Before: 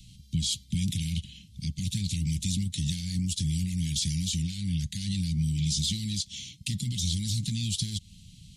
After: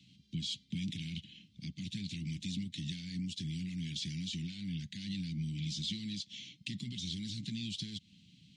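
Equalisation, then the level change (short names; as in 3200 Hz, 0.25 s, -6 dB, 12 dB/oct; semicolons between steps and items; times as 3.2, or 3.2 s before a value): dynamic EQ 630 Hz, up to -5 dB, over -53 dBFS, Q 1; HPF 320 Hz 12 dB/oct; tape spacing loss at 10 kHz 30 dB; +4.0 dB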